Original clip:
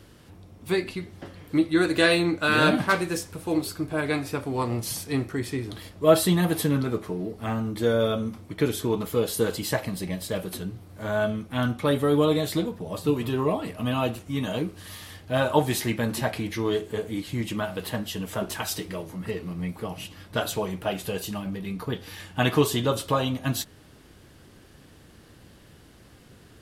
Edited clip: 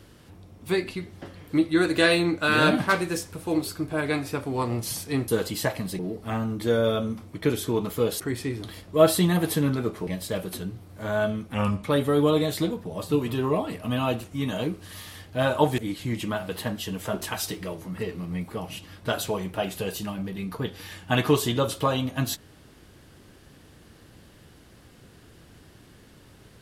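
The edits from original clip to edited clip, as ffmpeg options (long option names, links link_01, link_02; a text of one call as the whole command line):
ffmpeg -i in.wav -filter_complex "[0:a]asplit=8[link_01][link_02][link_03][link_04][link_05][link_06][link_07][link_08];[link_01]atrim=end=5.282[link_09];[link_02]atrim=start=9.358:end=10.072[link_10];[link_03]atrim=start=7.148:end=9.362[link_11];[link_04]atrim=start=5.278:end=7.152[link_12];[link_05]atrim=start=10.068:end=11.544[link_13];[link_06]atrim=start=11.54:end=11.79,asetpts=PTS-STARTPTS,asetrate=36603,aresample=44100,atrim=end_sample=13283,asetpts=PTS-STARTPTS[link_14];[link_07]atrim=start=11.786:end=15.732[link_15];[link_08]atrim=start=17.058[link_16];[link_09][link_10]acrossfade=duration=0.004:curve1=hsin:curve2=hsin[link_17];[link_17][link_11]acrossfade=duration=0.004:curve1=hsin:curve2=hsin[link_18];[link_18][link_12]acrossfade=duration=0.004:curve1=hsin:curve2=hsin[link_19];[link_19][link_13]acrossfade=duration=0.004:curve1=hsin:curve2=hsin[link_20];[link_20][link_14]acrossfade=duration=0.004:curve1=hsin:curve2=hsin[link_21];[link_21][link_15]acrossfade=duration=0.004:curve1=hsin:curve2=hsin[link_22];[link_22][link_16]acrossfade=duration=0.004:curve1=hsin:curve2=hsin" out.wav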